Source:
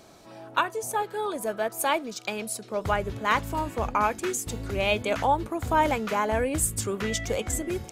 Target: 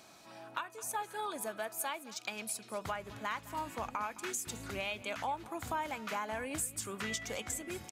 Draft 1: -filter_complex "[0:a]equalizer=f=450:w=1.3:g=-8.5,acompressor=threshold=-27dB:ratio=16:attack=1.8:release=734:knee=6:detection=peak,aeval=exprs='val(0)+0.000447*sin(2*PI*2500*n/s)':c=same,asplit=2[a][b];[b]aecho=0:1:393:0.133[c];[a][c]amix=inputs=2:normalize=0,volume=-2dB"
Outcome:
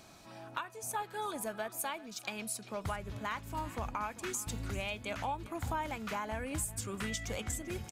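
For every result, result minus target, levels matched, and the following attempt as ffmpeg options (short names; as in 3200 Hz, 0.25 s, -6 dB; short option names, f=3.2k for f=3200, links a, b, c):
echo 0.179 s late; 250 Hz band +2.5 dB
-filter_complex "[0:a]equalizer=f=450:w=1.3:g=-8.5,acompressor=threshold=-27dB:ratio=16:attack=1.8:release=734:knee=6:detection=peak,aeval=exprs='val(0)+0.000447*sin(2*PI*2500*n/s)':c=same,asplit=2[a][b];[b]aecho=0:1:214:0.133[c];[a][c]amix=inputs=2:normalize=0,volume=-2dB"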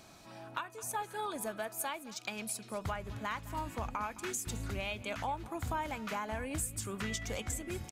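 250 Hz band +2.5 dB
-filter_complex "[0:a]highpass=f=300:p=1,equalizer=f=450:w=1.3:g=-8.5,acompressor=threshold=-27dB:ratio=16:attack=1.8:release=734:knee=6:detection=peak,aeval=exprs='val(0)+0.000447*sin(2*PI*2500*n/s)':c=same,asplit=2[a][b];[b]aecho=0:1:214:0.133[c];[a][c]amix=inputs=2:normalize=0,volume=-2dB"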